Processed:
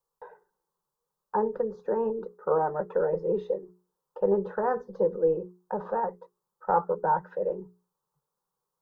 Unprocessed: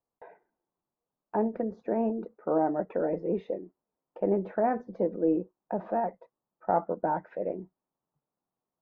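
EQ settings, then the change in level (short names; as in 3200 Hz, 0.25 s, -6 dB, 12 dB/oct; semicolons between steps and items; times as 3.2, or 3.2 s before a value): bell 240 Hz -14.5 dB 0.75 oct; notches 60/120/180/240/300/360/420 Hz; fixed phaser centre 450 Hz, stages 8; +8.0 dB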